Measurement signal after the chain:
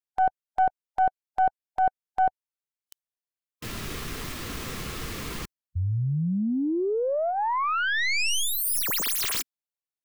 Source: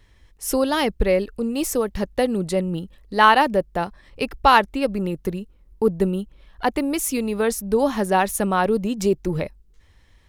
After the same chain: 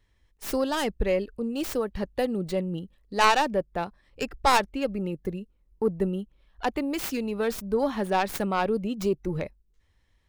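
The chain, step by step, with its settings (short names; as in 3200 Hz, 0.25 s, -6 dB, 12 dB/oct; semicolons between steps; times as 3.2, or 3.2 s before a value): tracing distortion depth 0.23 ms; spectral noise reduction 7 dB; in parallel at -6 dB: soft clip -10.5 dBFS; on the sum: gain -9 dB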